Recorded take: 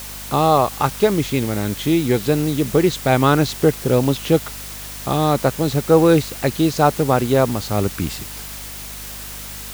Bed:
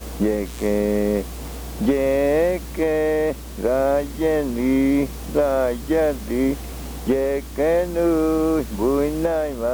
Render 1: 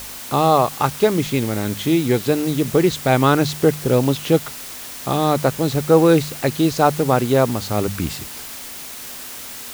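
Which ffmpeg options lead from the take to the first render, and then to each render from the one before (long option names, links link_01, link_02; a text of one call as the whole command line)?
ffmpeg -i in.wav -af "bandreject=frequency=50:width_type=h:width=4,bandreject=frequency=100:width_type=h:width=4,bandreject=frequency=150:width_type=h:width=4,bandreject=frequency=200:width_type=h:width=4" out.wav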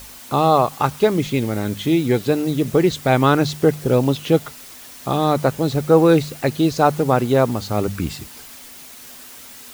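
ffmpeg -i in.wav -af "afftdn=noise_reduction=7:noise_floor=-34" out.wav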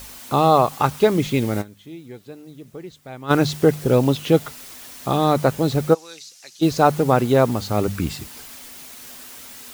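ffmpeg -i in.wav -filter_complex "[0:a]asplit=3[link_01][link_02][link_03];[link_01]afade=type=out:start_time=5.93:duration=0.02[link_04];[link_02]bandpass=frequency=5800:width_type=q:width=2.6,afade=type=in:start_time=5.93:duration=0.02,afade=type=out:start_time=6.61:duration=0.02[link_05];[link_03]afade=type=in:start_time=6.61:duration=0.02[link_06];[link_04][link_05][link_06]amix=inputs=3:normalize=0,asplit=3[link_07][link_08][link_09];[link_07]atrim=end=1.74,asetpts=PTS-STARTPTS,afade=type=out:start_time=1.61:duration=0.13:curve=exp:silence=0.0944061[link_10];[link_08]atrim=start=1.74:end=3.18,asetpts=PTS-STARTPTS,volume=-20.5dB[link_11];[link_09]atrim=start=3.18,asetpts=PTS-STARTPTS,afade=type=in:duration=0.13:curve=exp:silence=0.0944061[link_12];[link_10][link_11][link_12]concat=n=3:v=0:a=1" out.wav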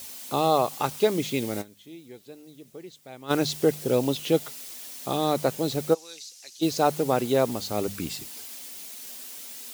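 ffmpeg -i in.wav -af "highpass=frequency=500:poles=1,equalizer=frequency=1300:width=0.75:gain=-9" out.wav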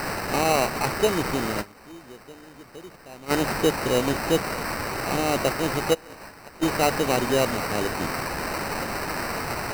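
ffmpeg -i in.wav -af "aexciter=amount=3.2:drive=5.3:freq=9300,acrusher=samples=13:mix=1:aa=0.000001" out.wav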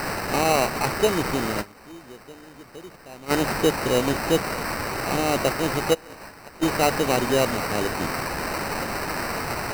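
ffmpeg -i in.wav -af "volume=1dB" out.wav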